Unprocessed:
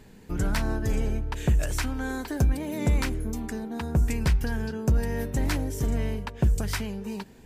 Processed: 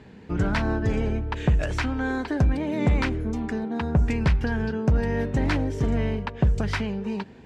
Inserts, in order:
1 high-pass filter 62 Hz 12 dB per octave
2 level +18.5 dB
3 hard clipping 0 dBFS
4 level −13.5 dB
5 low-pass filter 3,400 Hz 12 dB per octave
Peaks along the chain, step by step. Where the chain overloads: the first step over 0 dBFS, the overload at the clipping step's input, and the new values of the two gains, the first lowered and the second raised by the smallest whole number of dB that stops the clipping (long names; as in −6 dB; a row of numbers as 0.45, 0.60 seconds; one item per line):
−13.0, +5.5, 0.0, −13.5, −13.0 dBFS
step 2, 5.5 dB
step 2 +12.5 dB, step 4 −7.5 dB